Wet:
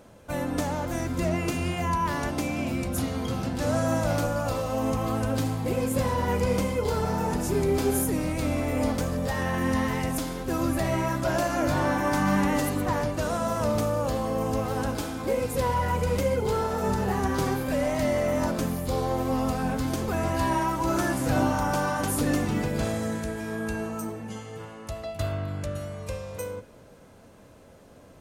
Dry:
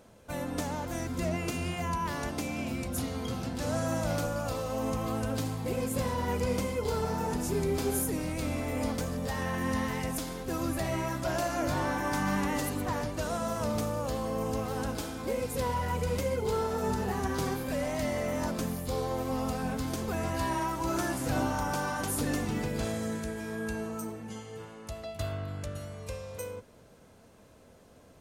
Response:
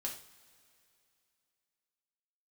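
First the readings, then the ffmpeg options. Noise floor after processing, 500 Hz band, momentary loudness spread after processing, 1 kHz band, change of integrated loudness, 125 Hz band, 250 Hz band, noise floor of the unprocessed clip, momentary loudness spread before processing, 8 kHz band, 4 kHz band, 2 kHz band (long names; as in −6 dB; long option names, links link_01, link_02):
−51 dBFS, +5.5 dB, 7 LU, +5.5 dB, +5.0 dB, +5.5 dB, +5.5 dB, −56 dBFS, 7 LU, +2.5 dB, +3.0 dB, +4.5 dB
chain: -filter_complex "[0:a]asplit=2[link_01][link_02];[1:a]atrim=start_sample=2205,lowpass=3200[link_03];[link_02][link_03]afir=irnorm=-1:irlink=0,volume=-7dB[link_04];[link_01][link_04]amix=inputs=2:normalize=0,volume=3dB"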